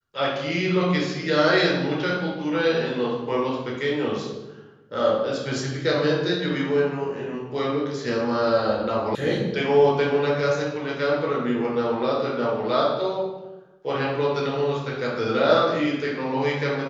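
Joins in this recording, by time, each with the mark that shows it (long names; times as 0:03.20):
0:09.15: cut off before it has died away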